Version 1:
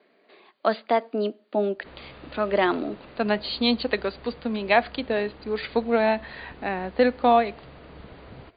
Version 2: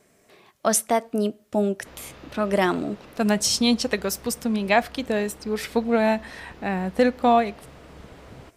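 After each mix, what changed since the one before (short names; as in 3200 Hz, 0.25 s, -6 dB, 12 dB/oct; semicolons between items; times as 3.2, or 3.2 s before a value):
speech: remove HPF 240 Hz 24 dB/oct; master: remove brick-wall FIR low-pass 4800 Hz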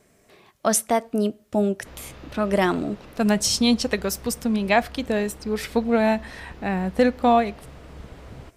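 master: add low shelf 96 Hz +9.5 dB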